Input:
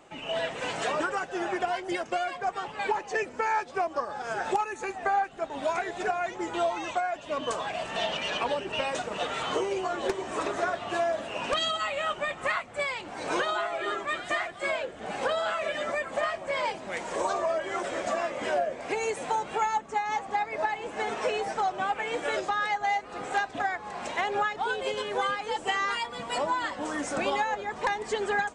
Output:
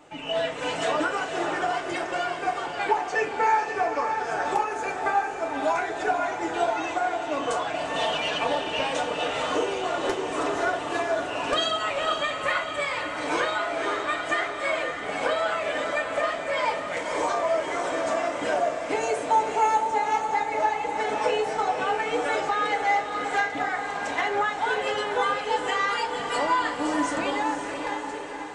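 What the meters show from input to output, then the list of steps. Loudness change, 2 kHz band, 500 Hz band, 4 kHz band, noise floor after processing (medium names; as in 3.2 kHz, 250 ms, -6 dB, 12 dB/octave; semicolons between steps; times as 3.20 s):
+4.0 dB, +3.5 dB, +3.5 dB, +3.5 dB, -33 dBFS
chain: fade out at the end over 1.67 s; echo that smears into a reverb 542 ms, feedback 54%, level -6 dB; FDN reverb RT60 0.34 s, low-frequency decay 0.75×, high-frequency decay 0.7×, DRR 1 dB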